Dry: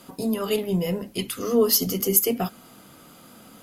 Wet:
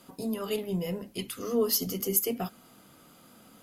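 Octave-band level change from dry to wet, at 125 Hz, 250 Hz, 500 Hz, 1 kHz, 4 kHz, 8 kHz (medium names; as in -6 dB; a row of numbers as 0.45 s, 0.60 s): -7.0 dB, -7.0 dB, -7.0 dB, -7.0 dB, -7.0 dB, -7.0 dB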